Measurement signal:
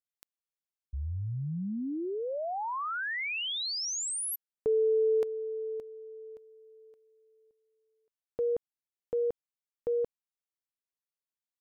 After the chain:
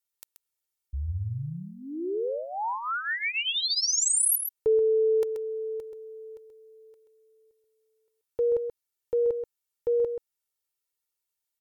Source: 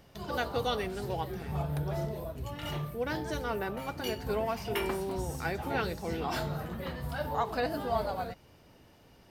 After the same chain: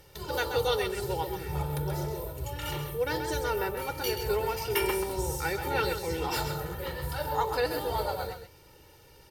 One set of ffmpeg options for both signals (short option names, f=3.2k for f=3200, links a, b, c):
-af "aemphasis=mode=production:type=cd,aecho=1:1:2.2:0.81,aecho=1:1:131:0.398"